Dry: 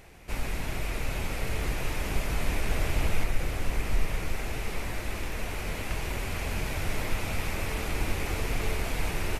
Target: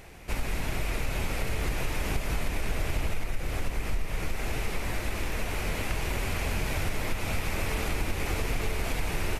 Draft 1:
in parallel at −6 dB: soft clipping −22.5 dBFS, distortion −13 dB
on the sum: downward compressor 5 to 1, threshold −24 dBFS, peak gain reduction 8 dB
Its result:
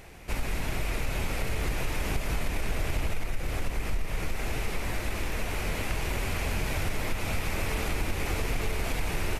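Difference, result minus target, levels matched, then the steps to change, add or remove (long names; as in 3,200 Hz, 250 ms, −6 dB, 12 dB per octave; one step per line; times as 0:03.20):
soft clipping: distortion +11 dB
change: soft clipping −14.5 dBFS, distortion −24 dB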